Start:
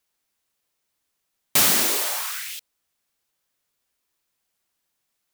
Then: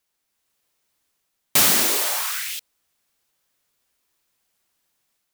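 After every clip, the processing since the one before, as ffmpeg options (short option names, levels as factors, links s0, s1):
-af "dynaudnorm=f=270:g=3:m=1.68"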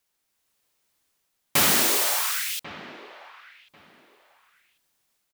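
-filter_complex "[0:a]acrossover=split=3200[s0][s1];[s0]aecho=1:1:1092|2184:0.178|0.0338[s2];[s1]volume=8.91,asoftclip=hard,volume=0.112[s3];[s2][s3]amix=inputs=2:normalize=0"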